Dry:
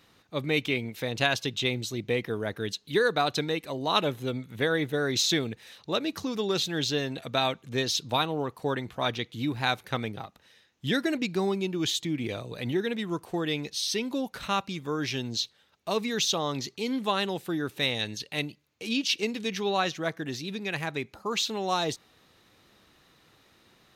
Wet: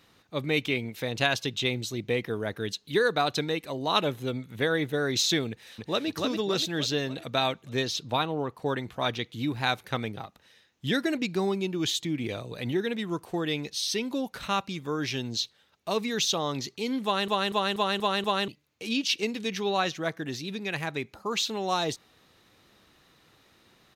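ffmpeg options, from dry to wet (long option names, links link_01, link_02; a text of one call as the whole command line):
ffmpeg -i in.wav -filter_complex "[0:a]asplit=2[link_01][link_02];[link_02]afade=type=in:start_time=5.49:duration=0.01,afade=type=out:start_time=6.07:duration=0.01,aecho=0:1:290|580|870|1160|1450|1740|2030:0.749894|0.374947|0.187474|0.0937368|0.0468684|0.0234342|0.0117171[link_03];[link_01][link_03]amix=inputs=2:normalize=0,asettb=1/sr,asplit=3[link_04][link_05][link_06];[link_04]atrim=end=7.874[link_07];[link_05]atrim=start=7.87:end=8.66,asetpts=PTS-STARTPTS,afade=type=in:duration=0.004:curve=qsin,afade=type=out:start_time=0.786:duration=0.004:curve=qsin,highshelf=frequency=4400:gain=-7[link_08];[link_06]atrim=start=8.656[link_09];[link_07][link_08]acrossfade=duration=0.004:curve1=hsin:curve2=qsin[link_10];[link_10][link_09]acrossfade=duration=0.004:curve1=qsin:curve2=hsin,asplit=7[link_11][link_12][link_13][link_14][link_15][link_16][link_17];[link_11]atrim=end=17.282[link_18];[link_12]atrim=start=17.038:end=17.282[link_19];[link_13]atrim=start=17.038:end=17.282[link_20];[link_14]atrim=start=17.038:end=17.282[link_21];[link_15]atrim=start=17.038:end=17.282[link_22];[link_16]atrim=start=17.038:end=17.282[link_23];[link_17]atrim=start=18.478[link_24];[link_18][link_19]acrossfade=duration=0.004:curve1=hsin:curve2=hsin[link_25];[link_25][link_20]acrossfade=duration=0.004:curve1=hsin:curve2=hsin[link_26];[link_26][link_21]acrossfade=duration=0.004:curve1=hsin:curve2=hsin[link_27];[link_27][link_22]acrossfade=duration=0.004:curve1=hsin:curve2=hsin[link_28];[link_28][link_23]acrossfade=duration=0.004:curve1=hsin:curve2=hsin[link_29];[link_29][link_24]acrossfade=duration=0.004:curve1=hsin:curve2=hsin" out.wav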